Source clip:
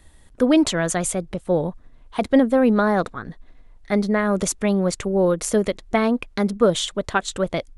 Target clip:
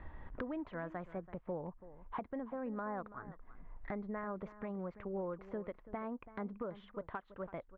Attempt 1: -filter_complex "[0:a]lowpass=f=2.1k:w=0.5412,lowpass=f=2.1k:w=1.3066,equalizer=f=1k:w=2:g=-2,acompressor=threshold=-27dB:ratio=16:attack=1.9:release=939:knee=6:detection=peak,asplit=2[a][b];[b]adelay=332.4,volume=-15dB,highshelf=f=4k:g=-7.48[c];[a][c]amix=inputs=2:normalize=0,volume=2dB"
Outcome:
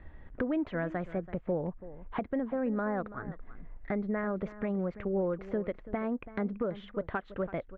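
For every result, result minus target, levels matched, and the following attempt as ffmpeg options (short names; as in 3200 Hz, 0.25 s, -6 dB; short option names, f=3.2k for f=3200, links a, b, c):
compressor: peak gain reduction -11 dB; 1000 Hz band -4.5 dB
-filter_complex "[0:a]lowpass=f=2.1k:w=0.5412,lowpass=f=2.1k:w=1.3066,equalizer=f=1k:w=2:g=-2,acompressor=threshold=-37dB:ratio=16:attack=1.9:release=939:knee=6:detection=peak,asplit=2[a][b];[b]adelay=332.4,volume=-15dB,highshelf=f=4k:g=-7.48[c];[a][c]amix=inputs=2:normalize=0,volume=2dB"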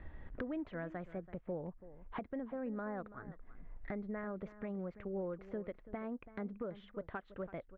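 1000 Hz band -4.0 dB
-filter_complex "[0:a]lowpass=f=2.1k:w=0.5412,lowpass=f=2.1k:w=1.3066,equalizer=f=1k:w=2:g=7,acompressor=threshold=-37dB:ratio=16:attack=1.9:release=939:knee=6:detection=peak,asplit=2[a][b];[b]adelay=332.4,volume=-15dB,highshelf=f=4k:g=-7.48[c];[a][c]amix=inputs=2:normalize=0,volume=2dB"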